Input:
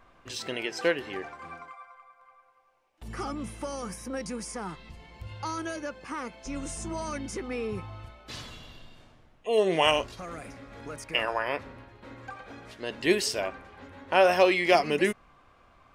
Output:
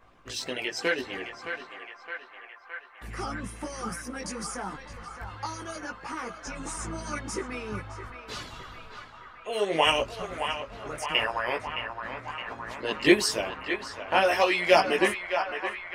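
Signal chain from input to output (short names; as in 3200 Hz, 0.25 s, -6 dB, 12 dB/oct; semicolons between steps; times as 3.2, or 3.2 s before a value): chorus voices 4, 0.87 Hz, delay 18 ms, depth 2.1 ms; harmonic-percussive split percussive +9 dB; narrowing echo 0.616 s, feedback 84%, band-pass 1300 Hz, level -6 dB; gain -2 dB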